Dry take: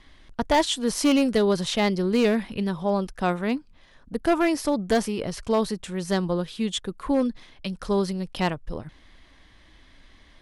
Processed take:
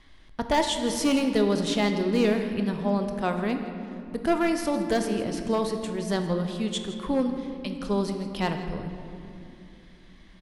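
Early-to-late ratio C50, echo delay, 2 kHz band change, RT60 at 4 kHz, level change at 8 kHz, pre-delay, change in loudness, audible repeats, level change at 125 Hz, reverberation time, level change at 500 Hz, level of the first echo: 6.5 dB, 163 ms, -2.0 dB, 1.7 s, -2.5 dB, 19 ms, -2.0 dB, 1, -1.0 dB, 2.8 s, -2.0 dB, -16.0 dB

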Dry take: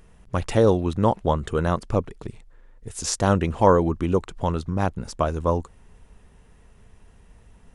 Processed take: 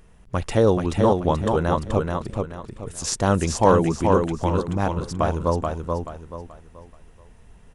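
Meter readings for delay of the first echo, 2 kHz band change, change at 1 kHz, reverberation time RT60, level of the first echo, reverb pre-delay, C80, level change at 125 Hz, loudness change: 431 ms, +1.5 dB, +1.5 dB, no reverb, -4.0 dB, no reverb, no reverb, +1.0 dB, +1.0 dB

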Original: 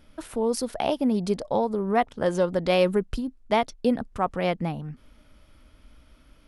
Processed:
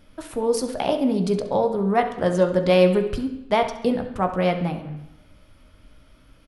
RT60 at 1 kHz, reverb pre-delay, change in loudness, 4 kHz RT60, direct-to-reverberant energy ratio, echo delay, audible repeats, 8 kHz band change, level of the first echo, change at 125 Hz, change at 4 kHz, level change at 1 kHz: 0.85 s, 10 ms, +4.0 dB, 0.85 s, 4.5 dB, 68 ms, 1, no reading, -15.0 dB, +5.5 dB, +2.0 dB, +2.5 dB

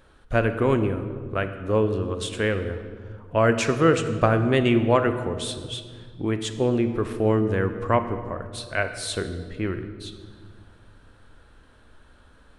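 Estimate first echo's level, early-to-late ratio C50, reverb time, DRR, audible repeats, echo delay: no echo, 9.5 dB, 1.7 s, 8.5 dB, no echo, no echo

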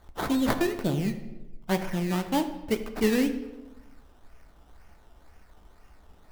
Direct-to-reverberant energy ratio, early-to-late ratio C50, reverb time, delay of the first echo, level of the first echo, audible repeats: 7.0 dB, 10.5 dB, 1.1 s, no echo, no echo, no echo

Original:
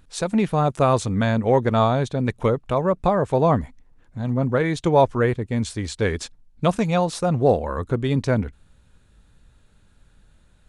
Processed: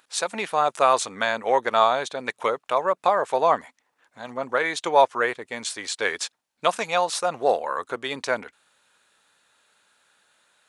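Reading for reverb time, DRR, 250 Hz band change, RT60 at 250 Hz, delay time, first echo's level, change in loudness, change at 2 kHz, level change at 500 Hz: no reverb, no reverb, -15.0 dB, no reverb, no echo, no echo, -2.5 dB, +4.5 dB, -3.0 dB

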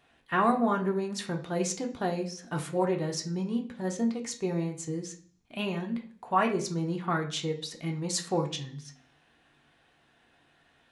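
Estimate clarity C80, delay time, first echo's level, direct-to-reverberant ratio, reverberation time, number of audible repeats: 16.0 dB, no echo, no echo, 1.5 dB, 0.50 s, no echo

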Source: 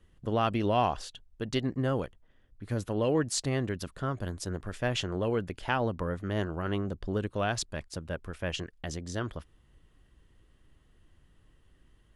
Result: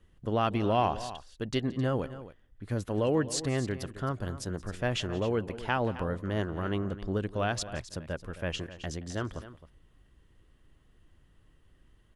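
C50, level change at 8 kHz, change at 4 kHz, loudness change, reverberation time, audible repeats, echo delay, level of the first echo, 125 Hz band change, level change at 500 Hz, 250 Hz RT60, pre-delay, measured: no reverb, -1.5 dB, -1.0 dB, 0.0 dB, no reverb, 2, 175 ms, -19.5 dB, +0.5 dB, 0.0 dB, no reverb, no reverb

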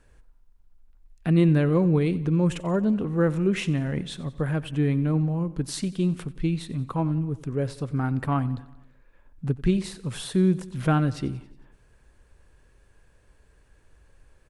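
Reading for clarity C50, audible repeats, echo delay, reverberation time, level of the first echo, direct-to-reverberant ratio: no reverb, 4, 91 ms, no reverb, -19.0 dB, no reverb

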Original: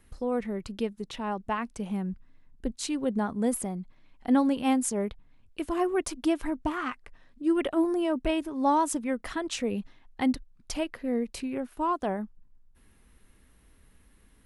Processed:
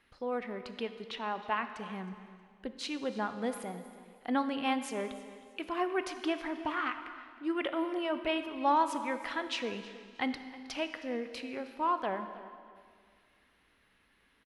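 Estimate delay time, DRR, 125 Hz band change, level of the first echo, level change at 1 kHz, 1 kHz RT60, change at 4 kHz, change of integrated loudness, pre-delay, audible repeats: 316 ms, 8.5 dB, under -10 dB, -18.0 dB, -1.5 dB, 2.0 s, +0.5 dB, -5.0 dB, 7 ms, 2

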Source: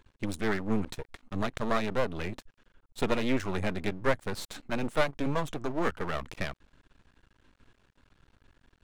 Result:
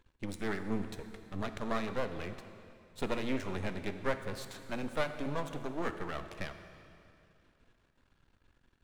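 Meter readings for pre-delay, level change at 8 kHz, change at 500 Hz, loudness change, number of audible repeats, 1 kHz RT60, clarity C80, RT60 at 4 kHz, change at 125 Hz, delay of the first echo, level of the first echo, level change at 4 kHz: 3 ms, -6.0 dB, -6.0 dB, -6.0 dB, no echo, 2.6 s, 10.0 dB, 2.5 s, -6.0 dB, no echo, no echo, -6.0 dB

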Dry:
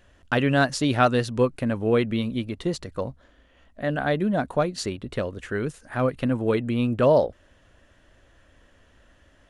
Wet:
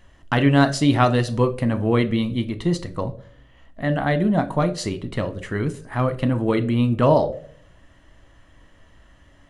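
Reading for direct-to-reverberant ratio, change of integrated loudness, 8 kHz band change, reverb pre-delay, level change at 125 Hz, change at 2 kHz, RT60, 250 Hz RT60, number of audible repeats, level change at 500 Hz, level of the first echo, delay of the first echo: 9.0 dB, +3.0 dB, +2.0 dB, 6 ms, +6.5 dB, +1.0 dB, 0.50 s, 0.60 s, no echo, +0.5 dB, no echo, no echo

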